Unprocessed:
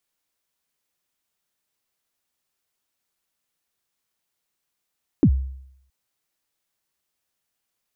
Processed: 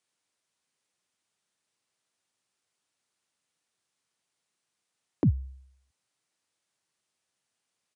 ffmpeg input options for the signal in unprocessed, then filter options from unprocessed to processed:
-f lavfi -i "aevalsrc='0.355*pow(10,-3*t/0.73)*sin(2*PI*(350*0.07/log(66/350)*(exp(log(66/350)*min(t,0.07)/0.07)-1)+66*max(t-0.07,0)))':duration=0.67:sample_rate=44100"
-filter_complex "[0:a]highpass=frequency=88:width=0.5412,highpass=frequency=88:width=1.3066,acrossover=split=160[link_01][link_02];[link_02]acompressor=threshold=-28dB:ratio=6[link_03];[link_01][link_03]amix=inputs=2:normalize=0,aresample=22050,aresample=44100"

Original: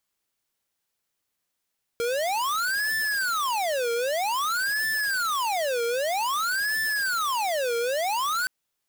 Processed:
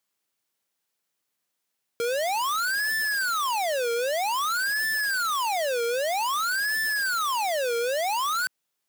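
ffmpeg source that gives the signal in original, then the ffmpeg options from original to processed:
-f lavfi -i "aevalsrc='0.0501*(2*lt(mod((1113*t-647/(2*PI*0.52)*sin(2*PI*0.52*t)),1),0.5)-1)':duration=6.47:sample_rate=44100"
-af "highpass=130"

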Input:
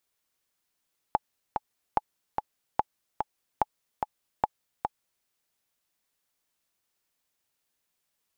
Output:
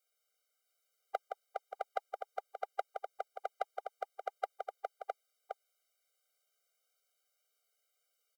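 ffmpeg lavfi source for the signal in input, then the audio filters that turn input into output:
-f lavfi -i "aevalsrc='pow(10,(-9-5*gte(mod(t,2*60/146),60/146))/20)*sin(2*PI*851*mod(t,60/146))*exp(-6.91*mod(t,60/146)/0.03)':duration=4.1:sample_rate=44100"
-filter_complex "[0:a]aecho=1:1:168|661:0.422|0.631,acrossover=split=360|690[link_01][link_02][link_03];[link_02]asoftclip=type=hard:threshold=-29dB[link_04];[link_01][link_04][link_03]amix=inputs=3:normalize=0,afftfilt=real='re*eq(mod(floor(b*sr/1024/400),2),1)':imag='im*eq(mod(floor(b*sr/1024/400),2),1)':win_size=1024:overlap=0.75"

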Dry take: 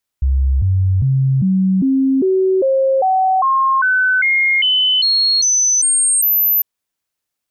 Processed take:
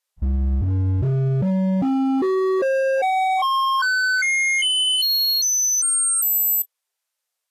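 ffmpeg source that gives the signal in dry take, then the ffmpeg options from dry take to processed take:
-f lavfi -i "aevalsrc='0.282*clip(min(mod(t,0.4),0.4-mod(t,0.4))/0.005,0,1)*sin(2*PI*66.8*pow(2,floor(t/0.4)/2)*mod(t,0.4))':duration=6.4:sample_rate=44100"
-af "bandreject=frequency=50:width_type=h:width=6,bandreject=frequency=100:width_type=h:width=6,bandreject=frequency=150:width_type=h:width=6,bandreject=frequency=200:width_type=h:width=6,bandreject=frequency=250:width_type=h:width=6,volume=18.5dB,asoftclip=hard,volume=-18.5dB" -ar 44100 -c:a libvorbis -b:a 32k

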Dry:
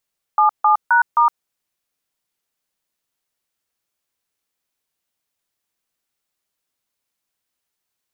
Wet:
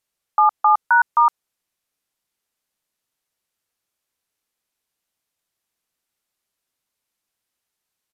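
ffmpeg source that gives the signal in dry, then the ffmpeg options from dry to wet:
-f lavfi -i "aevalsrc='0.224*clip(min(mod(t,0.263),0.113-mod(t,0.263))/0.002,0,1)*(eq(floor(t/0.263),0)*(sin(2*PI*852*mod(t,0.263))+sin(2*PI*1209*mod(t,0.263)))+eq(floor(t/0.263),1)*(sin(2*PI*852*mod(t,0.263))+sin(2*PI*1209*mod(t,0.263)))+eq(floor(t/0.263),2)*(sin(2*PI*941*mod(t,0.263))+sin(2*PI*1477*mod(t,0.263)))+eq(floor(t/0.263),3)*(sin(2*PI*941*mod(t,0.263))+sin(2*PI*1209*mod(t,0.263))))':duration=1.052:sample_rate=44100"
-af "aresample=32000,aresample=44100"

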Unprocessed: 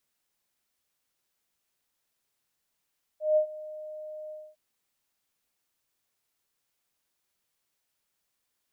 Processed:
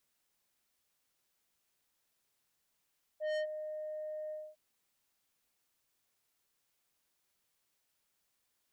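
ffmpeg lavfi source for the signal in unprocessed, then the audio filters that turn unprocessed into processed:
-f lavfi -i "aevalsrc='0.126*sin(2*PI*615*t)':duration=1.356:sample_rate=44100,afade=type=in:duration=0.165,afade=type=out:start_time=0.165:duration=0.095:silence=0.106,afade=type=out:start_time=1.11:duration=0.246"
-af "asoftclip=type=tanh:threshold=-34dB"

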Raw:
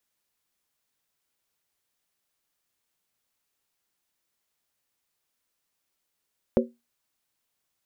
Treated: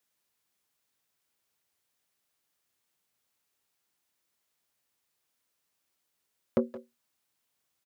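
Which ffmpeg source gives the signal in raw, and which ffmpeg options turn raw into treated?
-f lavfi -i "aevalsrc='0.141*pow(10,-3*t/0.23)*sin(2*PI*237*t)+0.126*pow(10,-3*t/0.182)*sin(2*PI*377.8*t)+0.112*pow(10,-3*t/0.157)*sin(2*PI*506.2*t)+0.1*pow(10,-3*t/0.152)*sin(2*PI*544.2*t)':duration=0.63:sample_rate=44100"
-filter_complex "[0:a]asoftclip=type=tanh:threshold=-16dB,highpass=56,asplit=2[link_01][link_02];[link_02]adelay=170,highpass=300,lowpass=3400,asoftclip=type=hard:threshold=-24dB,volume=-12dB[link_03];[link_01][link_03]amix=inputs=2:normalize=0"

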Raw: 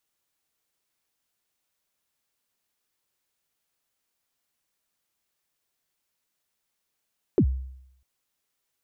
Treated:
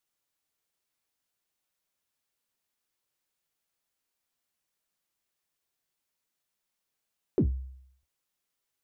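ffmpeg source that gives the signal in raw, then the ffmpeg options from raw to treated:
-f lavfi -i "aevalsrc='0.211*pow(10,-3*t/0.76)*sin(2*PI*(450*0.073/log(65/450)*(exp(log(65/450)*min(t,0.073)/0.073)-1)+65*max(t-0.073,0)))':duration=0.65:sample_rate=44100"
-af "flanger=delay=5.4:depth=8.3:regen=-59:speed=0.6:shape=sinusoidal"

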